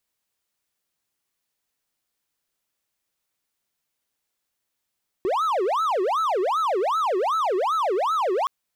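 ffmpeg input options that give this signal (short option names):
-f lavfi -i "aevalsrc='0.126*(1-4*abs(mod((840.5*t-479.5/(2*PI*2.6)*sin(2*PI*2.6*t))+0.25,1)-0.5))':d=3.22:s=44100"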